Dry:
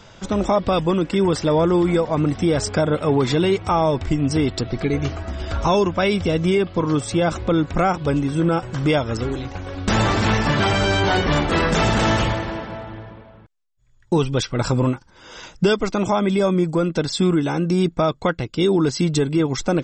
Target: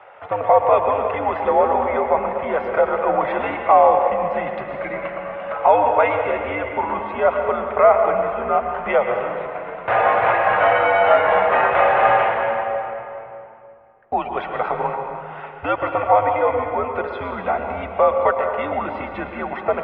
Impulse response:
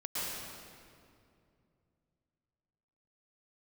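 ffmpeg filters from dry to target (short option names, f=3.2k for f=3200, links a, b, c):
-filter_complex "[0:a]lowshelf=f=520:t=q:w=3:g=-12,asplit=2[a][b];[1:a]atrim=start_sample=2205,lowpass=6k[c];[b][c]afir=irnorm=-1:irlink=0,volume=-6dB[d];[a][d]amix=inputs=2:normalize=0,highpass=f=230:t=q:w=0.5412,highpass=f=230:t=q:w=1.307,lowpass=f=2.5k:t=q:w=0.5176,lowpass=f=2.5k:t=q:w=0.7071,lowpass=f=2.5k:t=q:w=1.932,afreqshift=-100"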